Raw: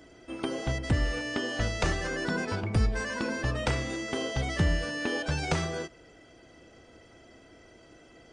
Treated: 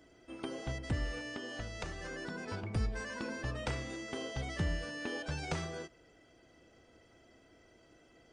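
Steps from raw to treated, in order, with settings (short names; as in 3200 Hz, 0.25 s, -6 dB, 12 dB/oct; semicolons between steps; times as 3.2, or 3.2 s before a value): 1.28–2.46 compressor 4:1, threshold -30 dBFS, peak gain reduction 7 dB; gain -8.5 dB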